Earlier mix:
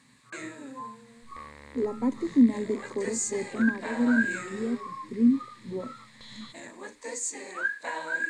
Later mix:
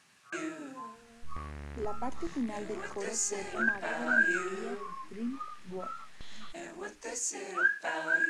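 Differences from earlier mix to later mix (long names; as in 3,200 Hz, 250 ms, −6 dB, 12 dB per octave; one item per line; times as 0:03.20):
speech: add low shelf with overshoot 500 Hz −9.5 dB, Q 1.5
second sound: add bass and treble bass +13 dB, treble −8 dB
master: remove EQ curve with evenly spaced ripples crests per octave 1, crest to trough 10 dB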